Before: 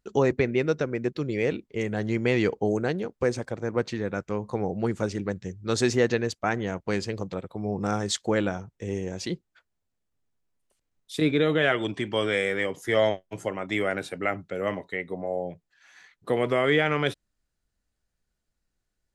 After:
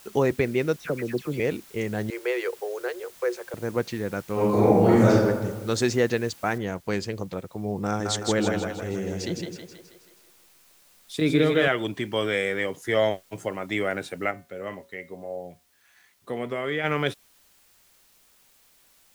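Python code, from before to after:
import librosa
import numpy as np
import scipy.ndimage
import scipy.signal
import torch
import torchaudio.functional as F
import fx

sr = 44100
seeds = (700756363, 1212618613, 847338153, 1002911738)

y = fx.dispersion(x, sr, late='lows', ms=93.0, hz=2000.0, at=(0.76, 1.4))
y = fx.cheby_ripple_highpass(y, sr, hz=350.0, ripple_db=6, at=(2.1, 3.54))
y = fx.reverb_throw(y, sr, start_s=4.33, length_s=0.77, rt60_s=1.4, drr_db=-10.5)
y = fx.noise_floor_step(y, sr, seeds[0], at_s=6.58, before_db=-51, after_db=-60, tilt_db=0.0)
y = fx.echo_split(y, sr, split_hz=350.0, low_ms=106, high_ms=161, feedback_pct=52, wet_db=-3.5, at=(7.89, 11.68))
y = fx.comb_fb(y, sr, f0_hz=79.0, decay_s=0.33, harmonics='odd', damping=0.0, mix_pct=60, at=(14.3, 16.83), fade=0.02)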